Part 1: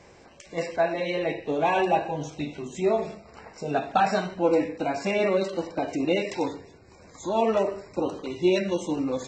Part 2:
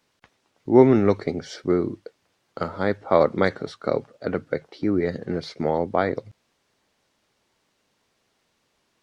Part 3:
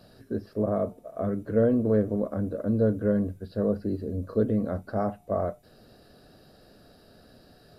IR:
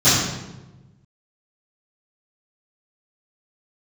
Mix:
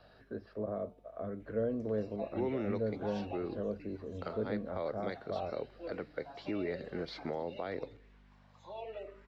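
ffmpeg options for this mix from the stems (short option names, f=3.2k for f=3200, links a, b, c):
-filter_complex "[0:a]aeval=exprs='val(0)+0.0141*(sin(2*PI*50*n/s)+sin(2*PI*2*50*n/s)/2+sin(2*PI*3*50*n/s)/3+sin(2*PI*4*50*n/s)/4+sin(2*PI*5*50*n/s)/5)':c=same,asplit=2[a][b];[b]afreqshift=-0.92[c];[a][c]amix=inputs=2:normalize=1,adelay=1400,volume=-10.5dB[d];[1:a]adelay=1650,volume=1dB[e];[2:a]volume=0dB,asplit=2[f][g];[g]apad=whole_len=470701[h];[e][h]sidechaincompress=threshold=-26dB:ratio=8:attack=33:release=967[i];[d][i]amix=inputs=2:normalize=0,aeval=exprs='val(0)+0.00224*(sin(2*PI*50*n/s)+sin(2*PI*2*50*n/s)/2+sin(2*PI*3*50*n/s)/3+sin(2*PI*4*50*n/s)/4+sin(2*PI*5*50*n/s)/5)':c=same,alimiter=limit=-14.5dB:level=0:latency=1:release=206,volume=0dB[j];[f][j]amix=inputs=2:normalize=0,acrossover=split=560 3700:gain=0.2 1 0.0631[k][l][m];[k][l][m]amix=inputs=3:normalize=0,acrossover=split=490|3000[n][o][p];[o]acompressor=threshold=-51dB:ratio=2.5[q];[n][q][p]amix=inputs=3:normalize=0"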